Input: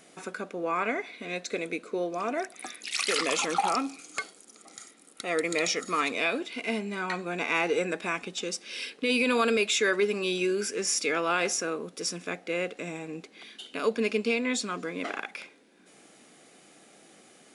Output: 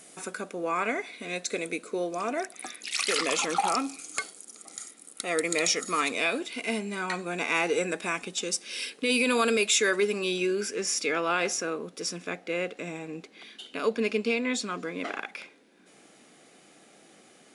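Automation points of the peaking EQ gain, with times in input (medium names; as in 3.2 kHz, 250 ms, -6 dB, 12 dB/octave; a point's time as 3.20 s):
peaking EQ 9.6 kHz 1.2 oct
2.13 s +11 dB
2.68 s +2 dB
3.47 s +2 dB
3.92 s +9 dB
9.98 s +9 dB
10.52 s -2 dB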